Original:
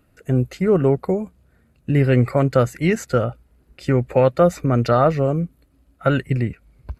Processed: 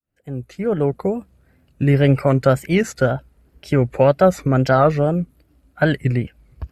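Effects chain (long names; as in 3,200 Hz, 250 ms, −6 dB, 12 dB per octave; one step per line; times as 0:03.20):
fade in at the beginning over 1.34 s
tape wow and flutter 120 cents
wrong playback speed 24 fps film run at 25 fps
level +1.5 dB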